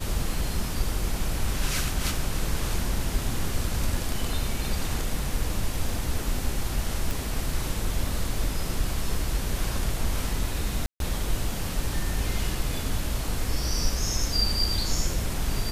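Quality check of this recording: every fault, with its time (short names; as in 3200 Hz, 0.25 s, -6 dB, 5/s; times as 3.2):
7.11 pop
10.86–11 gap 0.142 s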